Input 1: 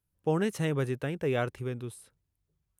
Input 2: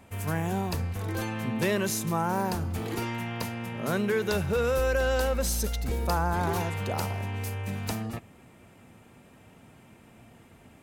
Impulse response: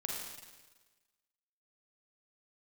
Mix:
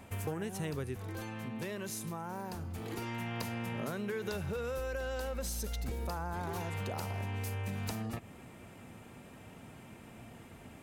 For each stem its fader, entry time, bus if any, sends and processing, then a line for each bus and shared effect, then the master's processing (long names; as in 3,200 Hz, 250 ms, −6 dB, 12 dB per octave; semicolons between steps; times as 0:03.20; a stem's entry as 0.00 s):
−3.0 dB, 0.00 s, muted 0:00.98–0:01.92, no send, high-shelf EQ 8,000 Hz +9 dB
+2.0 dB, 0.00 s, no send, downward compressor 2 to 1, threshold −34 dBFS, peak gain reduction 7 dB; automatic ducking −8 dB, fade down 0.50 s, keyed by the first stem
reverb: not used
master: downward compressor, threshold −34 dBFS, peak gain reduction 9.5 dB